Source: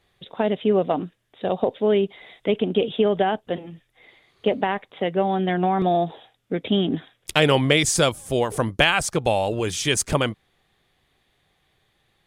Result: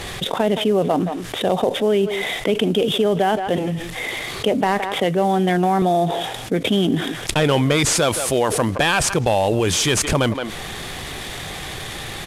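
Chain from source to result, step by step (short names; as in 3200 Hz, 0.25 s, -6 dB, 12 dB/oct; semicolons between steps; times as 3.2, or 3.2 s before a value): CVSD 64 kbps; 7.93–9 low shelf 150 Hz -9.5 dB; speakerphone echo 0.17 s, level -22 dB; fast leveller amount 70%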